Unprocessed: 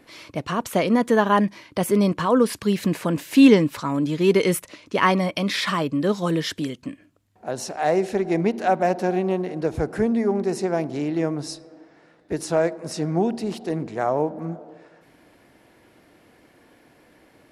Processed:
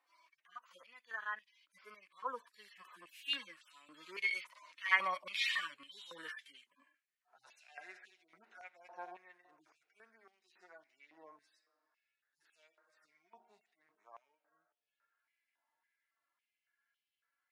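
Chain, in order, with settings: median-filter separation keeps harmonic; Doppler pass-by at 5.32, 10 m/s, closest 8.1 m; stepped high-pass 3.6 Hz 970–3000 Hz; gain -7.5 dB

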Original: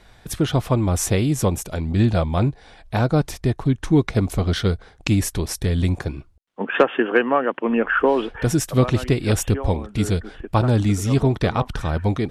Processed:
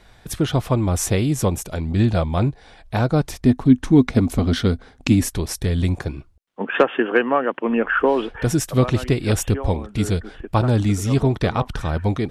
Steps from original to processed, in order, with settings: 3.4–5.29 bell 250 Hz +13.5 dB 0.3 oct

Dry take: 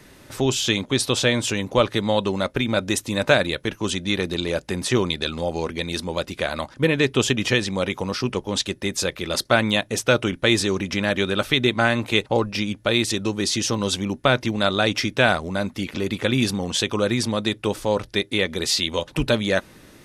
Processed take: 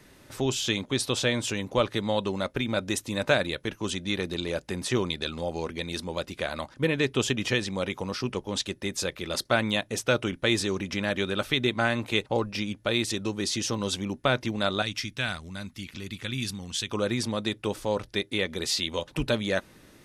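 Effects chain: 14.82–16.91 bell 550 Hz -14.5 dB 2.4 oct; gain -6 dB

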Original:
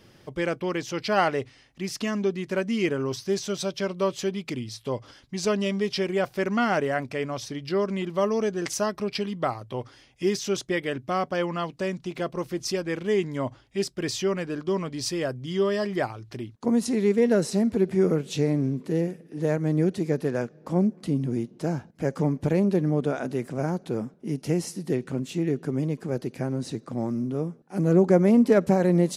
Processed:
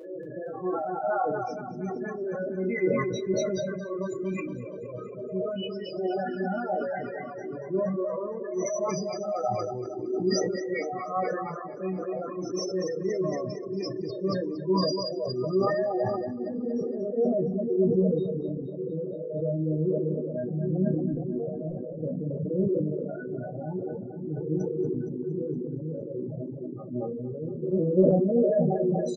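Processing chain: spectral swells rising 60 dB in 2.23 s; reverb removal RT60 0.98 s; loudest bins only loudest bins 8; 21.12–21.7 HPF 69 Hz 12 dB/oct; resonator bank B2 major, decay 0.28 s; on a send: feedback echo 0.233 s, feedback 60%, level -6 dB; on the sum: reverb removal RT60 1.4 s; sustainer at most 29 dB/s; gain +9 dB

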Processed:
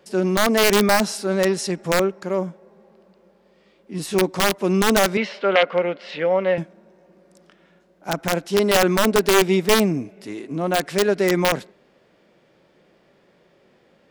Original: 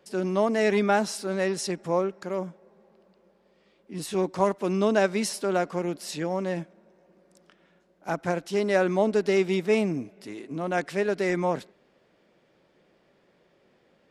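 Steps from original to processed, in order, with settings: wrapped overs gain 15 dB; 5.17–6.58 speaker cabinet 260–3700 Hz, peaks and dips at 330 Hz -8 dB, 520 Hz +7 dB, 1400 Hz +5 dB, 2100 Hz +8 dB, 3000 Hz +6 dB; harmonic-percussive split harmonic +4 dB; gain +3.5 dB

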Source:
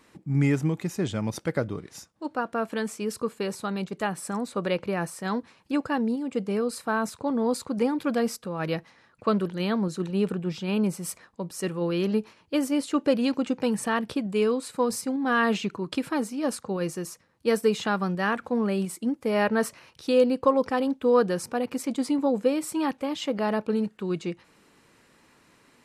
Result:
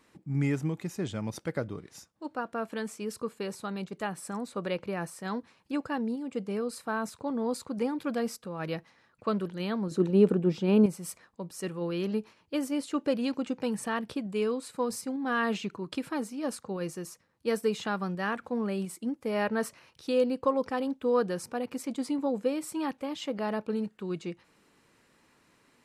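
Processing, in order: 9.91–10.86 bell 350 Hz +11.5 dB 2.6 oct; gain -5.5 dB

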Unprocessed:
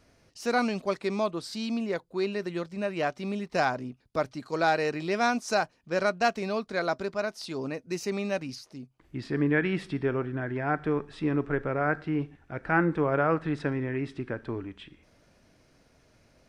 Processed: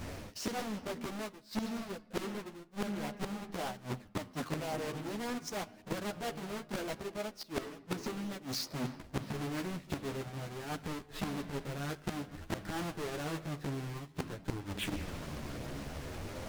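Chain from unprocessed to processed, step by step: half-waves squared off; flipped gate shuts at -26 dBFS, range -29 dB; on a send at -18 dB: reverb RT60 2.8 s, pre-delay 46 ms; on the sum: chorus voices 2, 0.51 Hz, delay 12 ms, depth 2.7 ms; reverse; compressor 16:1, threshold -51 dBFS, peak gain reduction 23 dB; reverse; Doppler distortion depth 0.88 ms; gain +17.5 dB

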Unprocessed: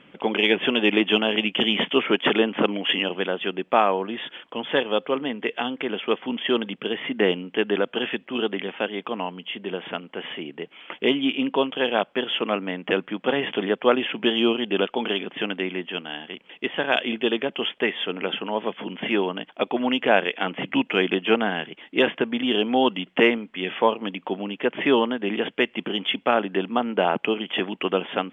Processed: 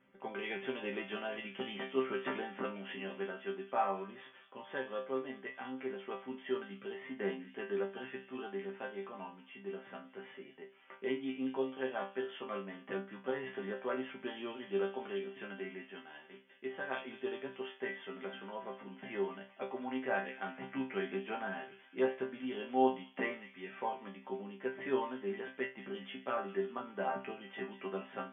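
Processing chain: resonant high shelf 2300 Hz -7.5 dB, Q 1.5; resonator bank C3 fifth, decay 0.31 s; thin delay 0.199 s, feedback 56%, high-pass 2900 Hz, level -8.5 dB; gain -3 dB

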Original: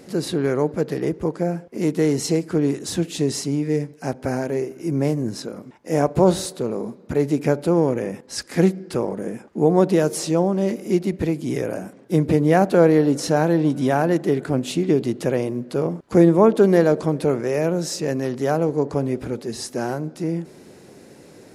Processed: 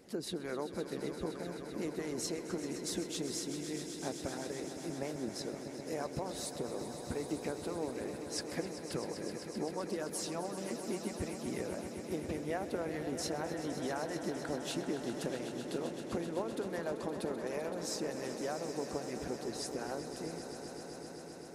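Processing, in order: harmonic-percussive split harmonic -15 dB; compressor, threshold -26 dBFS, peak gain reduction 11.5 dB; swelling echo 0.129 s, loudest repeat 5, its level -12 dB; gain -8.5 dB

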